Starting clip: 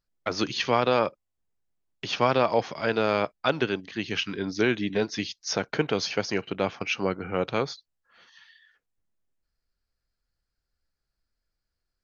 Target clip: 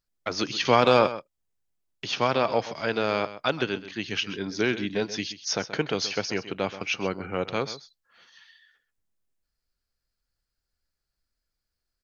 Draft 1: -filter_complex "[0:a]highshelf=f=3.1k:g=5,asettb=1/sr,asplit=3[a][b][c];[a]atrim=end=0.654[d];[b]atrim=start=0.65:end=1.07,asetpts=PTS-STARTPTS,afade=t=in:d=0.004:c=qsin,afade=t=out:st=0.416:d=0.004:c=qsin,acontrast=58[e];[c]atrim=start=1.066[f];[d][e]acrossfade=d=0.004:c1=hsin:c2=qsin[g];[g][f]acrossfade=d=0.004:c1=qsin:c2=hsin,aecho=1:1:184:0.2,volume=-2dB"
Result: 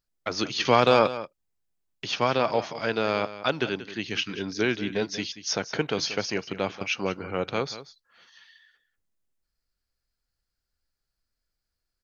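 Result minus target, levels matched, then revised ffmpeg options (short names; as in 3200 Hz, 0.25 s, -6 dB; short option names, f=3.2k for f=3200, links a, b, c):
echo 55 ms late
-filter_complex "[0:a]highshelf=f=3.1k:g=5,asettb=1/sr,asplit=3[a][b][c];[a]atrim=end=0.654[d];[b]atrim=start=0.65:end=1.07,asetpts=PTS-STARTPTS,afade=t=in:d=0.004:c=qsin,afade=t=out:st=0.416:d=0.004:c=qsin,acontrast=58[e];[c]atrim=start=1.066[f];[d][e]acrossfade=d=0.004:c1=hsin:c2=qsin[g];[g][f]acrossfade=d=0.004:c1=qsin:c2=hsin,aecho=1:1:129:0.2,volume=-2dB"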